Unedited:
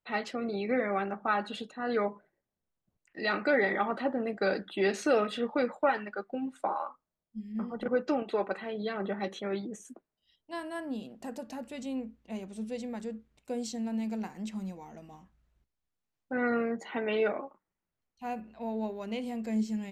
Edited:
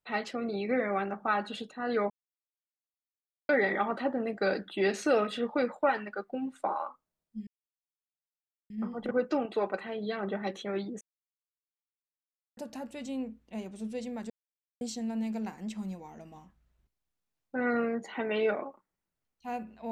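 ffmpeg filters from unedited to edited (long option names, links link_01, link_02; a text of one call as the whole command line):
ffmpeg -i in.wav -filter_complex "[0:a]asplit=8[link_01][link_02][link_03][link_04][link_05][link_06][link_07][link_08];[link_01]atrim=end=2.1,asetpts=PTS-STARTPTS,afade=type=out:start_time=2.096:duration=0.004:curve=hsin[link_09];[link_02]atrim=start=2.1:end=3.49,asetpts=PTS-STARTPTS,volume=0[link_10];[link_03]atrim=start=3.49:end=7.47,asetpts=PTS-STARTPTS,afade=type=in:duration=0.004:curve=hsin,afade=type=out:start_time=3.976:duration=0.004:curve=hsin,apad=pad_dur=1.23[link_11];[link_04]atrim=start=7.47:end=9.78,asetpts=PTS-STARTPTS,afade=type=in:duration=0.004:curve=hsin,afade=type=out:start_time=2.306:duration=0.004:curve=hsin[link_12];[link_05]atrim=start=9.78:end=11.34,asetpts=PTS-STARTPTS,volume=0[link_13];[link_06]atrim=start=11.34:end=13.07,asetpts=PTS-STARTPTS,afade=type=in:duration=0.004:curve=hsin,afade=type=out:start_time=1.726:duration=0.004:curve=hsin[link_14];[link_07]atrim=start=13.07:end=13.58,asetpts=PTS-STARTPTS,volume=0[link_15];[link_08]atrim=start=13.58,asetpts=PTS-STARTPTS,afade=type=in:duration=0.004:curve=hsin[link_16];[link_09][link_10][link_11][link_12][link_13][link_14][link_15][link_16]concat=n=8:v=0:a=1" out.wav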